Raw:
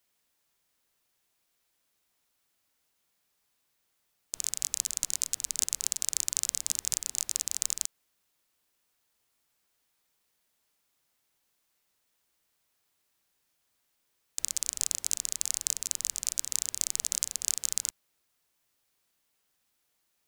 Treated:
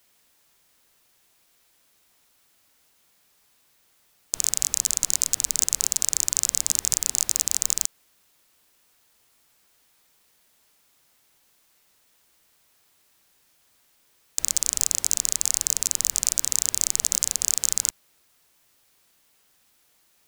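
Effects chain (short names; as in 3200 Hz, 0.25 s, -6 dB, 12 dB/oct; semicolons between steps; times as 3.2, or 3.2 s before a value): in parallel at +1 dB: limiter -12 dBFS, peak gain reduction 9.5 dB; on the sum: overloaded stage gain 8 dB; gain +6 dB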